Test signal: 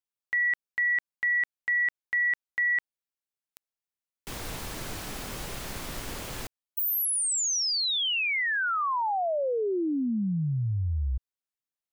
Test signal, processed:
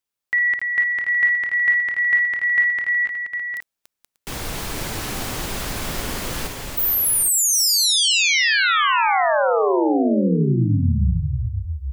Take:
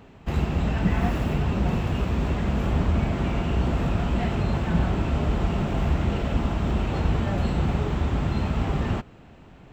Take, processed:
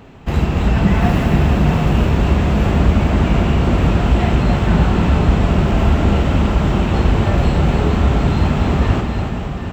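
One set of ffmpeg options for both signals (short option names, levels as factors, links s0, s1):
-af "aecho=1:1:55|286|477|589|755|816:0.376|0.501|0.355|0.106|0.355|0.282,volume=2.37"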